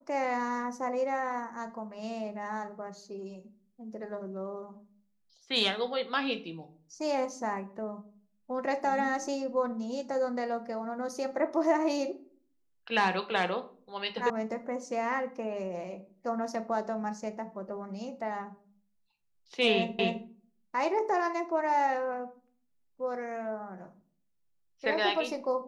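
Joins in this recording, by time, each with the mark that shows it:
0:14.30: cut off before it has died away
0:19.99: the same again, the last 0.26 s

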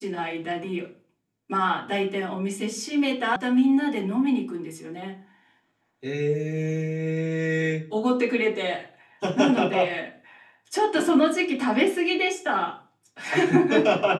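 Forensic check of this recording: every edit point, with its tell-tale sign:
0:03.36: cut off before it has died away

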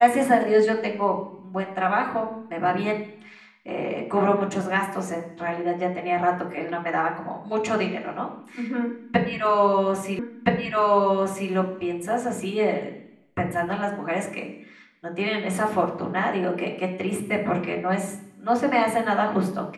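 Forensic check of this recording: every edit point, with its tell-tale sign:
0:10.19: the same again, the last 1.32 s

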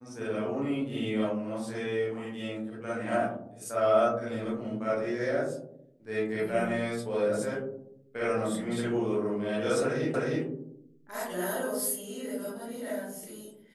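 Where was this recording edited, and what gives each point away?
0:10.14: the same again, the last 0.31 s

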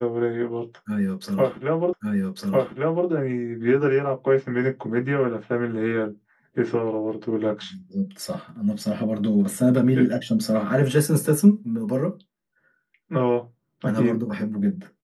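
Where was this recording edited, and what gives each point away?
0:01.93: the same again, the last 1.15 s

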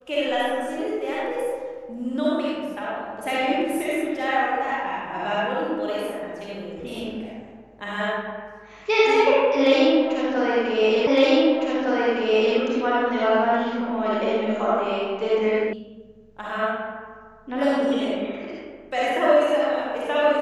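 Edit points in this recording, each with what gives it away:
0:11.07: the same again, the last 1.51 s
0:15.73: cut off before it has died away

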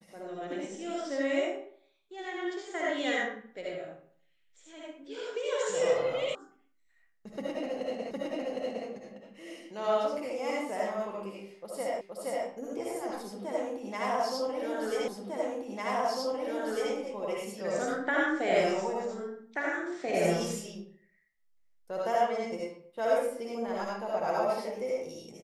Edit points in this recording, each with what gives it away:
0:06.35: cut off before it has died away
0:08.11: the same again, the last 0.76 s
0:12.01: the same again, the last 0.47 s
0:15.08: the same again, the last 1.85 s

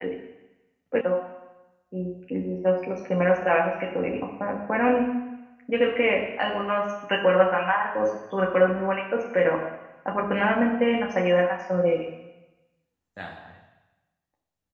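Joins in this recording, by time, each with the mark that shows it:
0:01.01: cut off before it has died away

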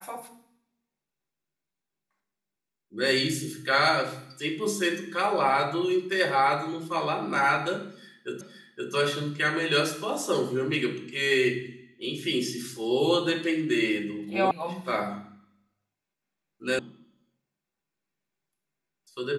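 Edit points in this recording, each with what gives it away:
0:08.41: the same again, the last 0.52 s
0:14.51: cut off before it has died away
0:16.79: cut off before it has died away

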